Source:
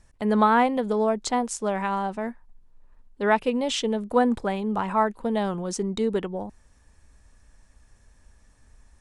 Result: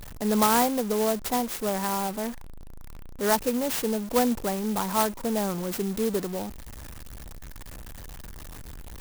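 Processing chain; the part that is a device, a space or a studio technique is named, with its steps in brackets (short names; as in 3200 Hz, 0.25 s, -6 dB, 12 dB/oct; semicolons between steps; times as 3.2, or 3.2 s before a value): early CD player with a faulty converter (zero-crossing step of -32 dBFS; clock jitter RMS 0.091 ms); gain -3 dB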